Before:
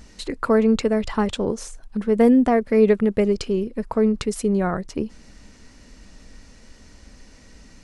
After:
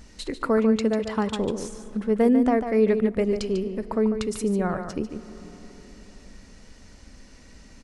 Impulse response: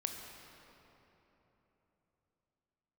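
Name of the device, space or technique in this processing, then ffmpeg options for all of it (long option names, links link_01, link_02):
ducked reverb: -filter_complex "[0:a]asettb=1/sr,asplit=3[link_01][link_02][link_03];[link_01]atrim=end=0.574[link_04];[link_02]atrim=start=0.57:end=1.36,asetpts=PTS-STARTPTS,afade=type=in:duration=0.004:curve=qsin,afade=type=out:start_time=0.786:duration=0.004:curve=qsin,highpass=61[link_05];[link_03]atrim=start=1.356[link_06];[link_04][link_05]acrossfade=duration=0.004:curve1=hsin:curve2=qsin[link_07];[link_07][link_06]acrossfade=duration=0.004:curve1=qsin:curve2=hsin,asplit=2[link_08][link_09];[link_09]adelay=145.8,volume=-8dB,highshelf=frequency=4000:gain=-3.28[link_10];[link_08][link_10]amix=inputs=2:normalize=0,asplit=3[link_11][link_12][link_13];[1:a]atrim=start_sample=2205[link_14];[link_12][link_14]afir=irnorm=-1:irlink=0[link_15];[link_13]apad=whole_len=351938[link_16];[link_15][link_16]sidechaincompress=threshold=-23dB:ratio=8:attack=9.3:release=703,volume=-7dB[link_17];[link_11][link_17]amix=inputs=2:normalize=0,volume=-5dB"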